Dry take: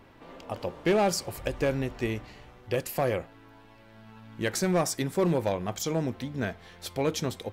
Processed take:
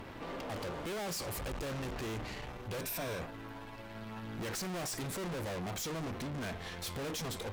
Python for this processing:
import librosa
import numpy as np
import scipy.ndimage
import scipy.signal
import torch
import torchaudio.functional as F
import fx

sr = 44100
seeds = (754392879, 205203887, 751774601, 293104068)

y = fx.tube_stage(x, sr, drive_db=48.0, bias=0.6)
y = fx.ripple_eq(y, sr, per_octave=1.6, db=8, at=(2.81, 3.21))
y = y * librosa.db_to_amplitude(10.5)